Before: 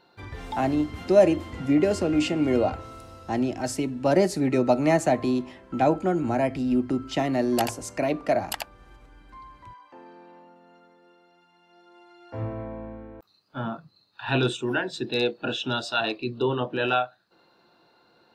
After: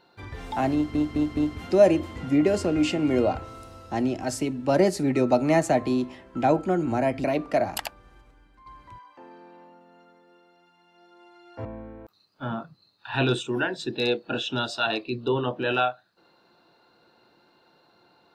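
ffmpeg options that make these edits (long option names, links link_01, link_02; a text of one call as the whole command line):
ffmpeg -i in.wav -filter_complex "[0:a]asplit=7[link_01][link_02][link_03][link_04][link_05][link_06][link_07];[link_01]atrim=end=0.952[link_08];[link_02]atrim=start=0.738:end=0.952[link_09];[link_03]atrim=start=0.738:end=0.952[link_10];[link_04]atrim=start=0.738:end=6.612[link_11];[link_05]atrim=start=7.988:end=9.41,asetpts=PTS-STARTPTS,afade=type=out:start_time=0.602:duration=0.82:silence=0.316228[link_12];[link_06]atrim=start=9.41:end=12.402,asetpts=PTS-STARTPTS,afade=type=in:duration=0.004:curve=hsin:silence=0.316228[link_13];[link_07]atrim=start=12.788[link_14];[link_08][link_09]acrossfade=duration=0.004:curve1=hsin:curve2=hsin[link_15];[link_15][link_10]acrossfade=duration=0.004:curve1=hsin:curve2=hsin[link_16];[link_16][link_11]acrossfade=duration=0.004:curve1=hsin:curve2=hsin[link_17];[link_12][link_13]concat=n=2:v=0:a=1[link_18];[link_17][link_18]acrossfade=duration=0.004:curve1=hsin:curve2=hsin[link_19];[link_19][link_14]acrossfade=duration=0.004:curve1=hsin:curve2=hsin" out.wav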